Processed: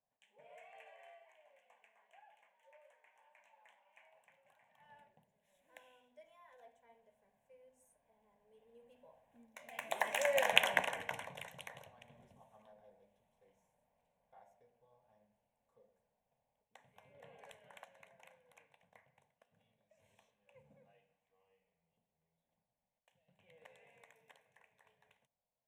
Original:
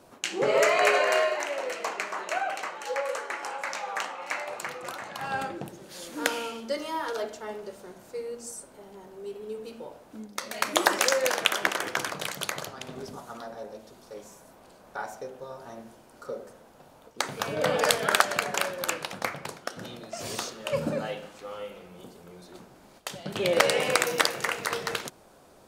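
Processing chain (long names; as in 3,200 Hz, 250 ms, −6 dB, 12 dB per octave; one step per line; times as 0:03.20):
source passing by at 0:10.58, 27 m/s, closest 5.5 metres
high-shelf EQ 6,100 Hz −8.5 dB
phaser with its sweep stopped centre 1,300 Hz, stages 6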